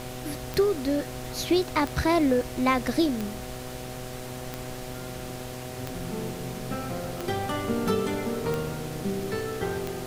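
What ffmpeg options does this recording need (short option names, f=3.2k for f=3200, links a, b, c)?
-af "adeclick=t=4,bandreject=f=125.8:t=h:w=4,bandreject=f=251.6:t=h:w=4,bandreject=f=377.4:t=h:w=4,bandreject=f=503.2:t=h:w=4,bandreject=f=629:t=h:w=4,bandreject=f=754.8:t=h:w=4,afftdn=nr=30:nf=-37"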